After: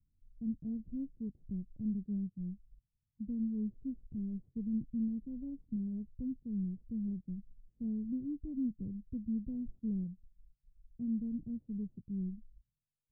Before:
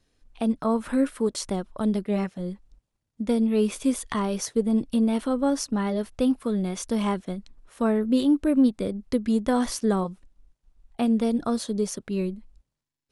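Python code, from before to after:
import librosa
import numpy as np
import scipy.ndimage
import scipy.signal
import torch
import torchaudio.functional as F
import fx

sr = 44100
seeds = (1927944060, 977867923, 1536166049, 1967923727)

y = fx.bit_reversed(x, sr, seeds[0], block=32)
y = fx.ladder_lowpass(y, sr, hz=210.0, resonance_pct=20)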